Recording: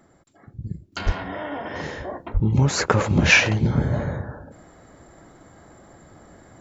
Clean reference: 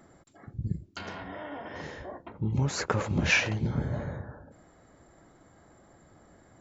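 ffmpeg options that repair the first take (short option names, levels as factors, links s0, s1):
-filter_complex "[0:a]asplit=3[s0][s1][s2];[s0]afade=t=out:st=1.05:d=0.02[s3];[s1]highpass=f=140:w=0.5412,highpass=f=140:w=1.3066,afade=t=in:st=1.05:d=0.02,afade=t=out:st=1.17:d=0.02[s4];[s2]afade=t=in:st=1.17:d=0.02[s5];[s3][s4][s5]amix=inputs=3:normalize=0,asplit=3[s6][s7][s8];[s6]afade=t=out:st=2.33:d=0.02[s9];[s7]highpass=f=140:w=0.5412,highpass=f=140:w=1.3066,afade=t=in:st=2.33:d=0.02,afade=t=out:st=2.45:d=0.02[s10];[s8]afade=t=in:st=2.45:d=0.02[s11];[s9][s10][s11]amix=inputs=3:normalize=0,asetnsamples=n=441:p=0,asendcmd='0.92 volume volume -9dB',volume=1"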